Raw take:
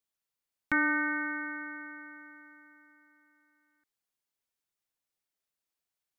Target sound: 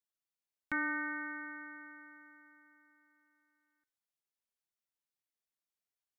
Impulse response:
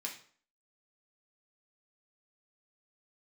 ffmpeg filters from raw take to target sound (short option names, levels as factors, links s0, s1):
-filter_complex "[0:a]asplit=2[s0][s1];[1:a]atrim=start_sample=2205,asetrate=35280,aresample=44100[s2];[s1][s2]afir=irnorm=-1:irlink=0,volume=0.168[s3];[s0][s3]amix=inputs=2:normalize=0,volume=0.376"